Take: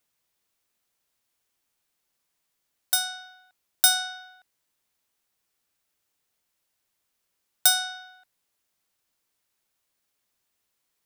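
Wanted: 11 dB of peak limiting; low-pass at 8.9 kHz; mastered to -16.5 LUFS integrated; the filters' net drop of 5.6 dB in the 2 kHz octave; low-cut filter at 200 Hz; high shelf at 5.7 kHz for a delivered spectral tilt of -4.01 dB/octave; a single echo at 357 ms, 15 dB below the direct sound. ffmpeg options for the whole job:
-af "highpass=200,lowpass=8900,equalizer=f=2000:t=o:g=-9,highshelf=f=5700:g=-8,alimiter=limit=0.0708:level=0:latency=1,aecho=1:1:357:0.178,volume=10.6"

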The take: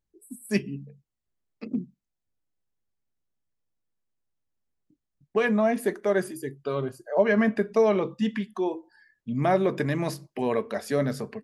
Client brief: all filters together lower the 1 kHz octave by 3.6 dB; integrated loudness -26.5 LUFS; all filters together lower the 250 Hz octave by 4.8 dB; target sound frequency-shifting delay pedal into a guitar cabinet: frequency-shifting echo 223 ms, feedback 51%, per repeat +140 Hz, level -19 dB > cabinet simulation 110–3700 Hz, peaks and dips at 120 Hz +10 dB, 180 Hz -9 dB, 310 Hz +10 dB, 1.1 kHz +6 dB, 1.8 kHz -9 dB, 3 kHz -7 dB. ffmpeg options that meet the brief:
-filter_complex "[0:a]equalizer=f=250:t=o:g=-8,equalizer=f=1000:t=o:g=-7,asplit=5[s0][s1][s2][s3][s4];[s1]adelay=223,afreqshift=140,volume=0.112[s5];[s2]adelay=446,afreqshift=280,volume=0.0575[s6];[s3]adelay=669,afreqshift=420,volume=0.0292[s7];[s4]adelay=892,afreqshift=560,volume=0.015[s8];[s0][s5][s6][s7][s8]amix=inputs=5:normalize=0,highpass=110,equalizer=f=120:t=q:w=4:g=10,equalizer=f=180:t=q:w=4:g=-9,equalizer=f=310:t=q:w=4:g=10,equalizer=f=1100:t=q:w=4:g=6,equalizer=f=1800:t=q:w=4:g=-9,equalizer=f=3000:t=q:w=4:g=-7,lowpass=f=3700:w=0.5412,lowpass=f=3700:w=1.3066,volume=1.41"

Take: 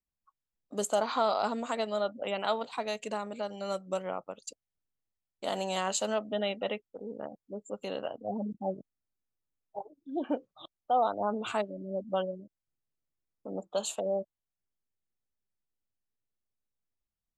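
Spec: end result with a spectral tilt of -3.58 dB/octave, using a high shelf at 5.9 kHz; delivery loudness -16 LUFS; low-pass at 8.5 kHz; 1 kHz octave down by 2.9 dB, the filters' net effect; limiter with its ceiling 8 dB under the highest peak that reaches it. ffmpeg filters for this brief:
-af "lowpass=8500,equalizer=f=1000:t=o:g=-4.5,highshelf=f=5900:g=6.5,volume=10.6,alimiter=limit=0.708:level=0:latency=1"

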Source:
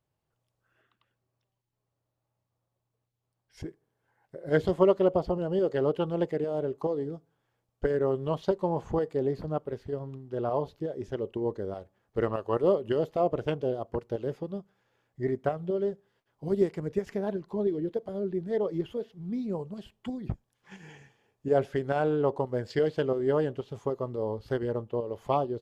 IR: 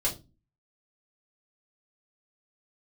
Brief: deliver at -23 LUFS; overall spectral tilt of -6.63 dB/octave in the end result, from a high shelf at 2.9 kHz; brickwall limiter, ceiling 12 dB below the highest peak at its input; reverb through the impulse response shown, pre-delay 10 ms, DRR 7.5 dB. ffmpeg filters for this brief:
-filter_complex "[0:a]highshelf=f=2900:g=-6.5,alimiter=limit=0.0891:level=0:latency=1,asplit=2[s0][s1];[1:a]atrim=start_sample=2205,adelay=10[s2];[s1][s2]afir=irnorm=-1:irlink=0,volume=0.188[s3];[s0][s3]amix=inputs=2:normalize=0,volume=2.82"

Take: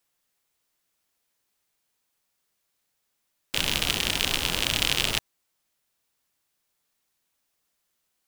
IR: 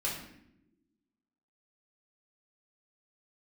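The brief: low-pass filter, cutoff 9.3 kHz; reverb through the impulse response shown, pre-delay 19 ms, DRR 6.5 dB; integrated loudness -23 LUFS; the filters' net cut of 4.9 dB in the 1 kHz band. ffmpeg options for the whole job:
-filter_complex "[0:a]lowpass=9300,equalizer=f=1000:t=o:g=-6.5,asplit=2[s0][s1];[1:a]atrim=start_sample=2205,adelay=19[s2];[s1][s2]afir=irnorm=-1:irlink=0,volume=0.266[s3];[s0][s3]amix=inputs=2:normalize=0,volume=1.19"

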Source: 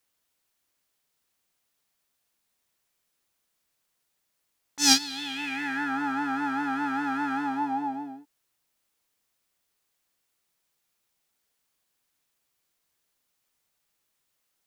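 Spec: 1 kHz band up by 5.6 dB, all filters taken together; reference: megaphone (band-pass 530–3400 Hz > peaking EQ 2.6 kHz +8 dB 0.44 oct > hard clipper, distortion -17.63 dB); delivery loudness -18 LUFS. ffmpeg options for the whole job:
-af "highpass=530,lowpass=3400,equalizer=f=1000:t=o:g=8,equalizer=f=2600:t=o:w=0.44:g=8,asoftclip=type=hard:threshold=0.126,volume=2.51"

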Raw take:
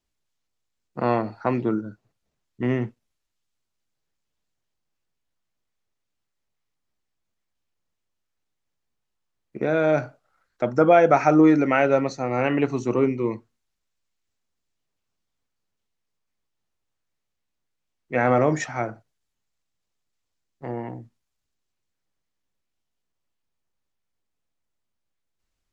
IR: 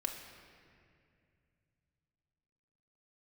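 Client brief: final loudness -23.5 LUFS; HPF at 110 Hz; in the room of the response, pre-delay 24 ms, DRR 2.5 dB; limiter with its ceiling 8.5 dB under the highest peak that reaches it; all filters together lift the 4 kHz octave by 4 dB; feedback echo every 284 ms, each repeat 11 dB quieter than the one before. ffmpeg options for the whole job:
-filter_complex "[0:a]highpass=110,equalizer=f=4000:t=o:g=5.5,alimiter=limit=0.211:level=0:latency=1,aecho=1:1:284|568|852:0.282|0.0789|0.0221,asplit=2[s0][s1];[1:a]atrim=start_sample=2205,adelay=24[s2];[s1][s2]afir=irnorm=-1:irlink=0,volume=0.668[s3];[s0][s3]amix=inputs=2:normalize=0,volume=1.06"

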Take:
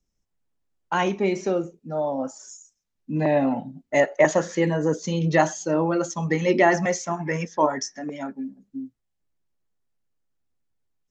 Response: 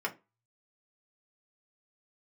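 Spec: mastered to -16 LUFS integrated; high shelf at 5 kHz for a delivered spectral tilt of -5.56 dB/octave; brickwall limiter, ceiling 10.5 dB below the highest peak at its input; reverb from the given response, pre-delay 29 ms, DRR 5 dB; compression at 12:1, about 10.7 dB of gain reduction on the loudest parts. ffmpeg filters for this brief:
-filter_complex "[0:a]highshelf=f=5000:g=-5.5,acompressor=threshold=0.0708:ratio=12,alimiter=limit=0.0668:level=0:latency=1,asplit=2[s0][s1];[1:a]atrim=start_sample=2205,adelay=29[s2];[s1][s2]afir=irnorm=-1:irlink=0,volume=0.299[s3];[s0][s3]amix=inputs=2:normalize=0,volume=7.08"

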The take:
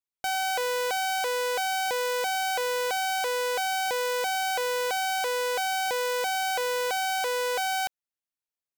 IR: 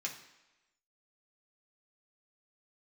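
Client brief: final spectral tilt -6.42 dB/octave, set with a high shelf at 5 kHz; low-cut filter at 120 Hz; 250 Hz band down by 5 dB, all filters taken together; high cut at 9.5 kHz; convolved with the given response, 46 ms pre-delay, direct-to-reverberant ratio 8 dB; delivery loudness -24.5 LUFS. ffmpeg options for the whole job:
-filter_complex "[0:a]highpass=120,lowpass=9500,equalizer=f=250:t=o:g=-7.5,highshelf=f=5000:g=-8.5,asplit=2[s0][s1];[1:a]atrim=start_sample=2205,adelay=46[s2];[s1][s2]afir=irnorm=-1:irlink=0,volume=0.355[s3];[s0][s3]amix=inputs=2:normalize=0,volume=1.5"

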